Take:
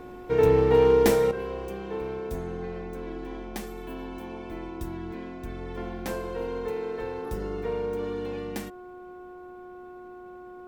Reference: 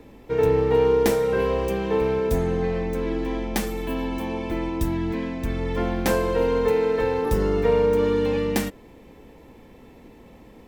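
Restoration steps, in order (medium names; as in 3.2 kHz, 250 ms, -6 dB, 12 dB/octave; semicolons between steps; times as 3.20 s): clip repair -11.5 dBFS; de-hum 362.1 Hz, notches 4; gain correction +11 dB, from 1.31 s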